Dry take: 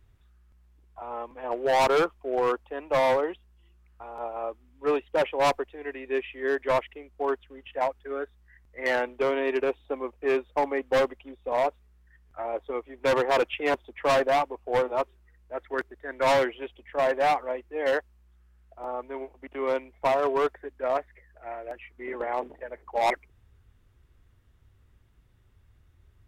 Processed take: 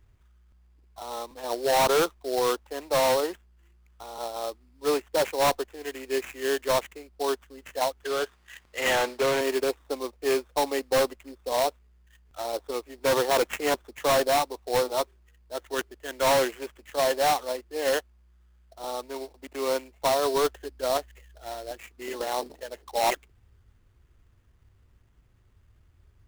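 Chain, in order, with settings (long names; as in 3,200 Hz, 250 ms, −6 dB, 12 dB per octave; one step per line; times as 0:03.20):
0:20.34–0:21.76: low-shelf EQ 150 Hz +7.5 dB
sample-rate reduction 4,800 Hz, jitter 20%
0:08.03–0:09.41: mid-hump overdrive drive 18 dB, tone 6,700 Hz, clips at −18.5 dBFS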